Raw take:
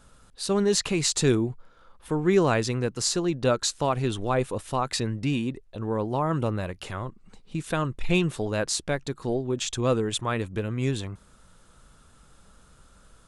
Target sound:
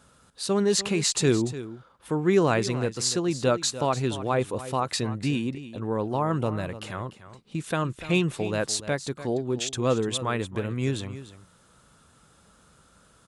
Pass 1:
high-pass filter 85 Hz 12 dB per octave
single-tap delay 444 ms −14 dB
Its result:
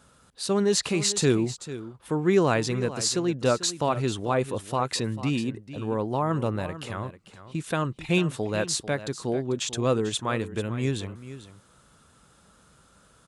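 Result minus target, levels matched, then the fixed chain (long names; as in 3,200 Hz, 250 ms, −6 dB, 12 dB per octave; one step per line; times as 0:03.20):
echo 149 ms late
high-pass filter 85 Hz 12 dB per octave
single-tap delay 295 ms −14 dB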